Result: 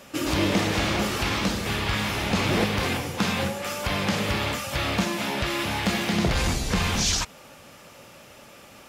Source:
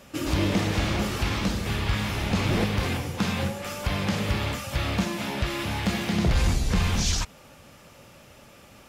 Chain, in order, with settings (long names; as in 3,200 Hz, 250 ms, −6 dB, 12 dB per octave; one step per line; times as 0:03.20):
low-shelf EQ 150 Hz −10 dB
level +4 dB